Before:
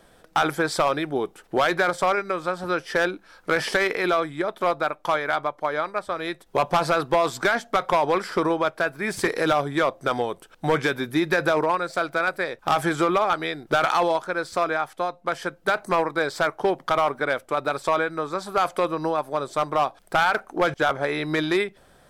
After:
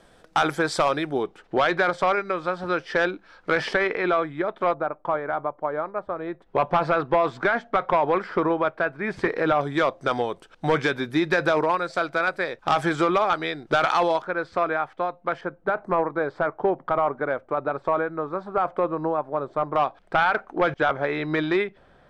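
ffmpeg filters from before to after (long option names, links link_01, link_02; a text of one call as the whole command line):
ffmpeg -i in.wav -af "asetnsamples=nb_out_samples=441:pad=0,asendcmd='1.23 lowpass f 4200;3.73 lowpass f 2500;4.74 lowpass f 1100;6.42 lowpass f 2300;9.61 lowpass f 6000;14.22 lowpass f 2400;15.41 lowpass f 1300;19.76 lowpass f 2900',lowpass=8500" out.wav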